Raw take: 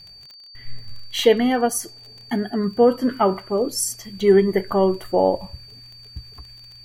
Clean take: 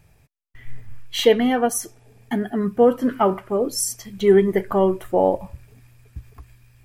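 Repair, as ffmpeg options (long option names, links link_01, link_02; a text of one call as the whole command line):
ffmpeg -i in.wav -af "adeclick=threshold=4,bandreject=frequency=4600:width=30" out.wav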